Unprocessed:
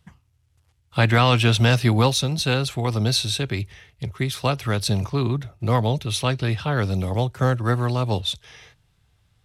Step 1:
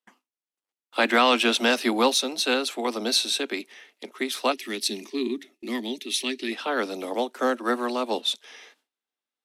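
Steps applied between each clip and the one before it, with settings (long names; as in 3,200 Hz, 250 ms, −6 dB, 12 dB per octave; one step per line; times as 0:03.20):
gain on a spectral selection 0:04.52–0:06.52, 410–1,700 Hz −16 dB
Butterworth high-pass 230 Hz 72 dB per octave
noise gate with hold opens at −48 dBFS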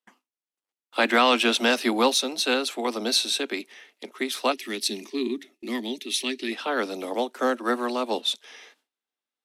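no processing that can be heard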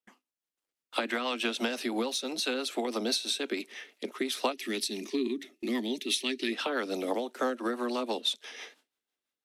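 downward compressor 12 to 1, threshold −30 dBFS, peak gain reduction 15.5 dB
rotating-speaker cabinet horn 6 Hz
automatic gain control gain up to 5 dB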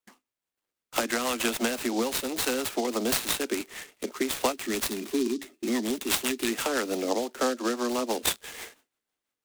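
short delay modulated by noise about 4,800 Hz, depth 0.057 ms
level +3.5 dB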